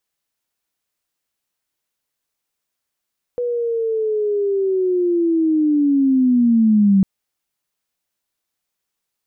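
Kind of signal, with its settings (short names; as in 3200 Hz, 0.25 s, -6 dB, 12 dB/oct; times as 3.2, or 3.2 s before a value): chirp linear 490 Hz -> 190 Hz -18.5 dBFS -> -9.5 dBFS 3.65 s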